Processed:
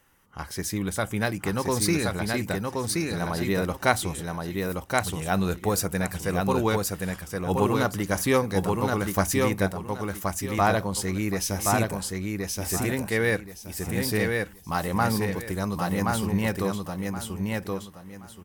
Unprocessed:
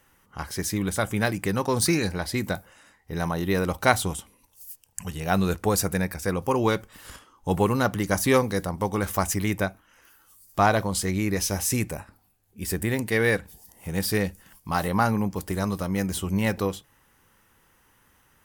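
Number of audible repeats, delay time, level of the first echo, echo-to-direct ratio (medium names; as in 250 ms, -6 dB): 3, 1074 ms, -3.0 dB, -2.5 dB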